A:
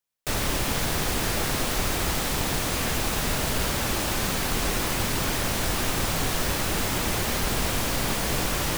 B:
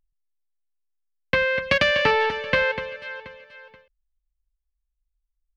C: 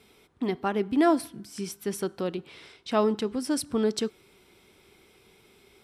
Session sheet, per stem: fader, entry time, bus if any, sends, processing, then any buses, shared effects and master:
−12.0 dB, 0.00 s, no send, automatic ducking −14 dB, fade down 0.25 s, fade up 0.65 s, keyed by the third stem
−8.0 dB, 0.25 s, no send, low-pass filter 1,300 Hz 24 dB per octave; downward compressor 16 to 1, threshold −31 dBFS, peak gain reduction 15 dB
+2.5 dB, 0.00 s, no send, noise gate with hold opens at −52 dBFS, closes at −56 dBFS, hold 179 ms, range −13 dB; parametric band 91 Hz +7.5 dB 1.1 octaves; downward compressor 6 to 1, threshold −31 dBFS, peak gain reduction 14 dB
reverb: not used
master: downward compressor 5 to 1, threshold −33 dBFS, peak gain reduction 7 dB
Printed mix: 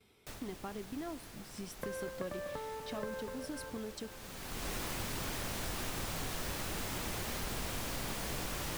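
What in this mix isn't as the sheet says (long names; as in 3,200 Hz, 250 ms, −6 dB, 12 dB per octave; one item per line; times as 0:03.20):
stem B: entry 0.25 s → 0.50 s
stem C +2.5 dB → −9.0 dB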